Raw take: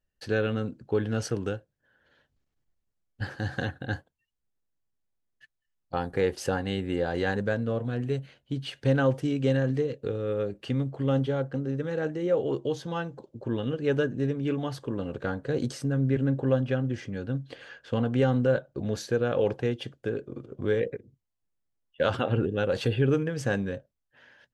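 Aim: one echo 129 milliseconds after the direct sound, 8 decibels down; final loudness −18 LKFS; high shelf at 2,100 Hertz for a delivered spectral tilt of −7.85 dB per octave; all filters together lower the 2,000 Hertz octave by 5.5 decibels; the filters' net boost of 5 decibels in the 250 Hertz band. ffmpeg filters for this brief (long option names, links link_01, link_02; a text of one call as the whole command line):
ffmpeg -i in.wav -af "equalizer=frequency=250:width_type=o:gain=6,equalizer=frequency=2000:width_type=o:gain=-5.5,highshelf=frequency=2100:gain=-4.5,aecho=1:1:129:0.398,volume=8dB" out.wav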